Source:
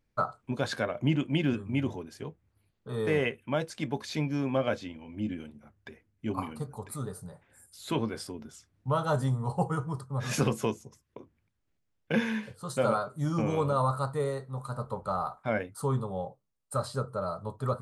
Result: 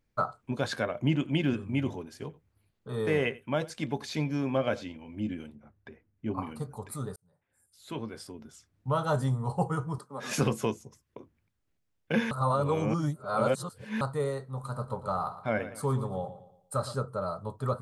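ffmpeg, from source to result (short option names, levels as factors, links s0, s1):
-filter_complex "[0:a]asettb=1/sr,asplit=3[s0][s1][s2];[s0]atrim=end=1.054[s3];[s1]atrim=start=1.05:end=4.97,asetpts=PTS-STARTPTS,afade=t=in:d=0.004:c=qsin,afade=t=out:st=3.916:d=0.004:c=qsin,aecho=1:1:88:0.0944,atrim=end_sample=172872[s4];[s2]atrim=start=4.966[s5];[s3][s4]acrossfade=d=0.004:c1=hsin:c2=qsin[s6];[s6][s5]acrossfade=d=0.004:c1=qsin:c2=hsin,asplit=3[s7][s8][s9];[s7]afade=t=out:st=5.54:d=0.02[s10];[s8]lowpass=f=1600:p=1,afade=t=in:st=5.54:d=0.02,afade=t=out:st=6.46:d=0.02[s11];[s9]afade=t=in:st=6.46:d=0.02[s12];[s10][s11][s12]amix=inputs=3:normalize=0,asettb=1/sr,asplit=3[s13][s14][s15];[s13]atrim=end=9.984[s16];[s14]atrim=start=9.98:end=10.38,asetpts=PTS-STARTPTS,afade=t=in:d=0.004:c=qsin,afade=t=out:st=0.396:d=0.004:c=qsin,highpass=f=220:w=0.5412,highpass=f=220:w=1.3066[s17];[s15]atrim=start=10.376[s18];[s16][s17]acrossfade=d=0.004:c1=hsin:c2=qsin[s19];[s19][s18]acrossfade=d=0.004:c1=qsin:c2=hsin,asettb=1/sr,asplit=3[s20][s21][s22];[s20]atrim=end=14.524[s23];[s21]atrim=start=14.52:end=16.95,asetpts=PTS-STARTPTS,afade=t=in:d=0.004:c=qsin,afade=t=out:st=2.426:d=0.004:c=qsin,aecho=1:1:115|230|345|460:0.224|0.0895|0.0358|0.0143,atrim=end_sample=107163[s24];[s22]atrim=start=16.946[s25];[s23][s24]acrossfade=d=0.004:c1=hsin:c2=qsin[s26];[s26][s25]acrossfade=d=0.004:c1=qsin:c2=hsin,asplit=4[s27][s28][s29][s30];[s27]atrim=end=7.16,asetpts=PTS-STARTPTS,afade=t=out:st=7.156:d=0.004:c=hsin[s31];[s28]atrim=start=7.16:end=12.312,asetpts=PTS-STARTPTS,afade=t=in:d=1.84[s32];[s29]atrim=start=12.308:end=14.012,asetpts=PTS-STARTPTS,areverse[s33];[s30]atrim=start=14.008[s34];[s31][s32]concat=n=2:v=0:a=1[s35];[s35][s33]acrossfade=d=0.004:c1=hsin:c2=hsin[s36];[s36][s34]acrossfade=d=0.004:c1=hsin:c2=hsin"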